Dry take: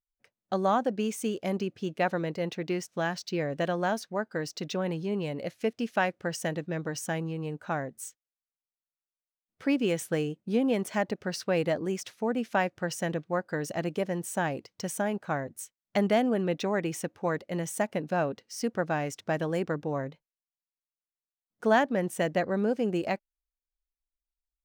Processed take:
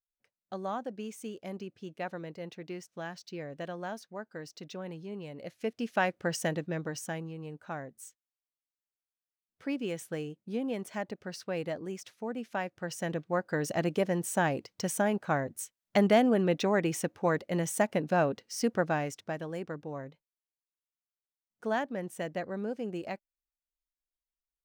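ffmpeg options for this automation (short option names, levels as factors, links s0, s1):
-af "volume=3.16,afade=t=in:st=5.33:d=1.01:silence=0.281838,afade=t=out:st=6.34:d=0.96:silence=0.375837,afade=t=in:st=12.7:d=1.01:silence=0.354813,afade=t=out:st=18.74:d=0.63:silence=0.334965"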